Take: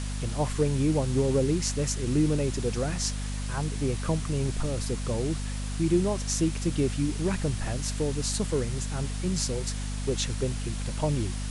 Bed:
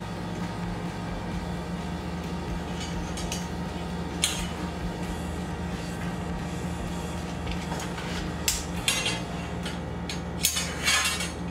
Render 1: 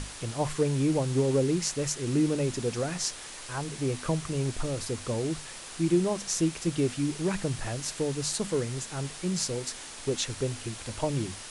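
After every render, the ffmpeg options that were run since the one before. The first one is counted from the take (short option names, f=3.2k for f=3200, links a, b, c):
-af "bandreject=f=50:t=h:w=6,bandreject=f=100:t=h:w=6,bandreject=f=150:t=h:w=6,bandreject=f=200:t=h:w=6,bandreject=f=250:t=h:w=6"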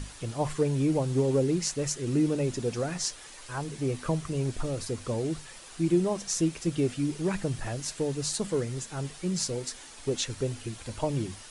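-af "afftdn=nr=7:nf=-43"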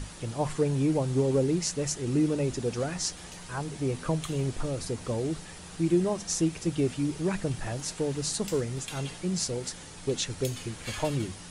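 -filter_complex "[1:a]volume=-16dB[a];[0:a][a]amix=inputs=2:normalize=0"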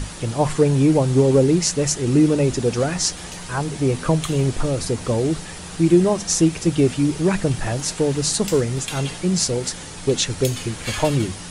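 -af "volume=10dB"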